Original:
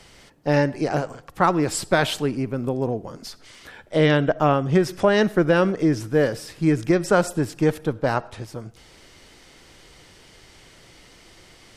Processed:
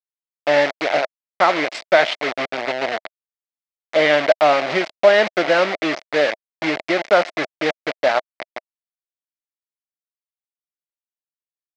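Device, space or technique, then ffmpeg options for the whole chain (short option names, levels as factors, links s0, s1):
hand-held game console: -af "acrusher=bits=3:mix=0:aa=0.000001,highpass=440,equalizer=f=440:t=q:w=4:g=-4,equalizer=f=640:t=q:w=4:g=9,equalizer=f=1000:t=q:w=4:g=-3,equalizer=f=2100:t=q:w=4:g=8,lowpass=f=4700:w=0.5412,lowpass=f=4700:w=1.3066,volume=1.33"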